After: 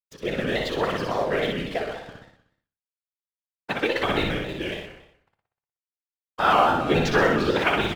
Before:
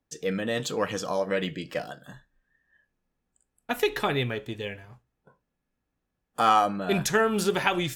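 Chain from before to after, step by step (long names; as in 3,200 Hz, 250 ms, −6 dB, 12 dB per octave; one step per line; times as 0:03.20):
low-pass filter 4,400 Hz 24 dB per octave
hum removal 47.48 Hz, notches 33
in parallel at −2 dB: downward compressor, threshold −32 dBFS, peak gain reduction 14 dB
on the sum: dead-zone distortion −42.5 dBFS
random phases in short frames
0:06.49–0:07.23: double-tracking delay 13 ms −4 dB
on a send: repeating echo 61 ms, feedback 57%, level −3.5 dB
on the sum: reverb whose tail is shaped and stops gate 160 ms flat, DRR 11.5 dB
pitch modulation by a square or saw wave square 3.6 Hz, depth 100 cents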